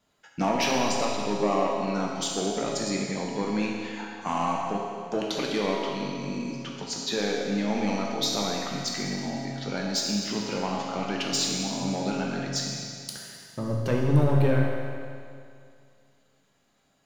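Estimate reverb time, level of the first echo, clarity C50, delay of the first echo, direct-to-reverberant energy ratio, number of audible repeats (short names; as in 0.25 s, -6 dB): 2.3 s, none, 0.0 dB, none, -2.5 dB, none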